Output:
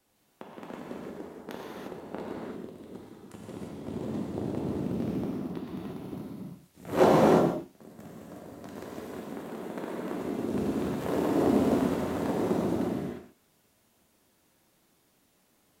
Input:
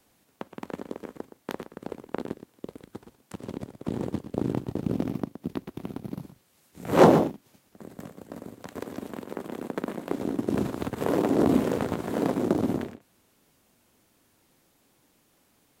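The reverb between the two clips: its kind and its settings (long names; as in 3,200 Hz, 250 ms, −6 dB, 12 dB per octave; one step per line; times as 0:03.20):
reverb whose tail is shaped and stops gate 380 ms flat, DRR −5 dB
level −8 dB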